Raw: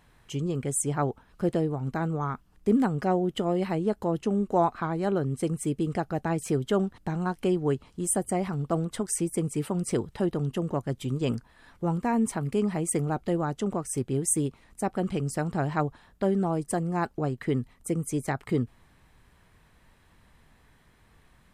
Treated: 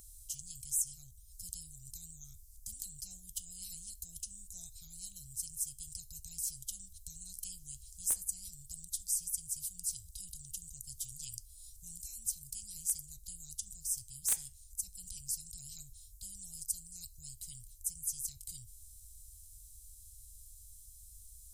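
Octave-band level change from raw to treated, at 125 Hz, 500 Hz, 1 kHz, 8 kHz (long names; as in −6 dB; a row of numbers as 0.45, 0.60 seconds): −26.5 dB, below −40 dB, below −35 dB, −1.0 dB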